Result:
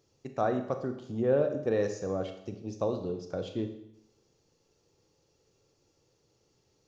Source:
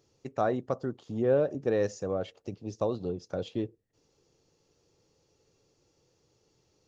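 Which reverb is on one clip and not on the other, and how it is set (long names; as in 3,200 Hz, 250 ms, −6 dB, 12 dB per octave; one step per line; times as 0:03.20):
four-comb reverb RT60 0.77 s, combs from 28 ms, DRR 6.5 dB
level −1.5 dB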